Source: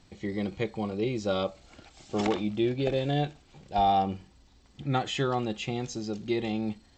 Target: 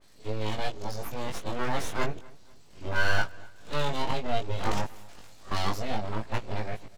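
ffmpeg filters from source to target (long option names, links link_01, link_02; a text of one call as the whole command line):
ffmpeg -i in.wav -filter_complex "[0:a]areverse,bass=frequency=250:gain=-1,treble=frequency=4000:gain=6,aeval=exprs='abs(val(0))':channel_layout=same,flanger=delay=18.5:depth=2.1:speed=0.3,asplit=2[link_01][link_02];[link_02]adelay=246,lowpass=frequency=3500:poles=1,volume=-23dB,asplit=2[link_03][link_04];[link_04]adelay=246,lowpass=frequency=3500:poles=1,volume=0.39,asplit=2[link_05][link_06];[link_06]adelay=246,lowpass=frequency=3500:poles=1,volume=0.39[link_07];[link_01][link_03][link_05][link_07]amix=inputs=4:normalize=0,adynamicequalizer=threshold=0.00141:dfrequency=2800:dqfactor=0.7:tfrequency=2800:tqfactor=0.7:attack=5:release=100:ratio=0.375:range=2.5:mode=cutabove:tftype=highshelf,volume=5dB" out.wav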